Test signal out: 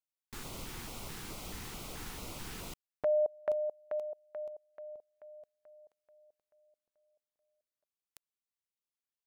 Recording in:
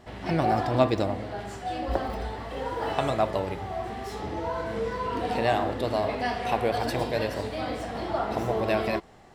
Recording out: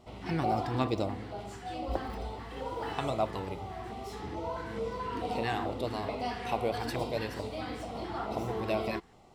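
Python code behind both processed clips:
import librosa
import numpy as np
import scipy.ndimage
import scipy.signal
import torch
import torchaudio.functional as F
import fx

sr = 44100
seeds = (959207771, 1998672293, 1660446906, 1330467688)

y = fx.filter_lfo_notch(x, sr, shape='square', hz=2.3, low_hz=600.0, high_hz=1700.0, q=2.2)
y = y * 10.0 ** (-5.0 / 20.0)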